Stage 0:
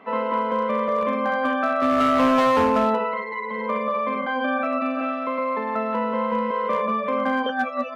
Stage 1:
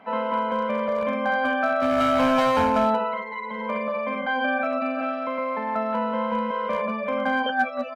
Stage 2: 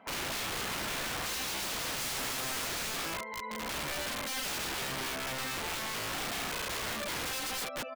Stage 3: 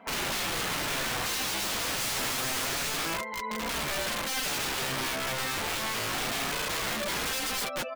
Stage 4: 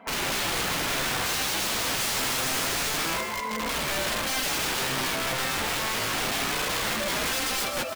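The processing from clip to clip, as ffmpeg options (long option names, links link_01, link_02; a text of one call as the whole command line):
ffmpeg -i in.wav -af "aecho=1:1:1.3:0.57,volume=-1.5dB" out.wav
ffmpeg -i in.wav -af "aeval=exprs='(mod(15.8*val(0)+1,2)-1)/15.8':channel_layout=same,volume=-7dB" out.wav
ffmpeg -i in.wav -af "flanger=delay=4.2:depth=6:regen=-41:speed=0.27:shape=triangular,volume=8.5dB" out.wav
ffmpeg -i in.wav -filter_complex "[0:a]asplit=6[link_01][link_02][link_03][link_04][link_05][link_06];[link_02]adelay=153,afreqshift=42,volume=-7dB[link_07];[link_03]adelay=306,afreqshift=84,volume=-13.7dB[link_08];[link_04]adelay=459,afreqshift=126,volume=-20.5dB[link_09];[link_05]adelay=612,afreqshift=168,volume=-27.2dB[link_10];[link_06]adelay=765,afreqshift=210,volume=-34dB[link_11];[link_01][link_07][link_08][link_09][link_10][link_11]amix=inputs=6:normalize=0,volume=2.5dB" out.wav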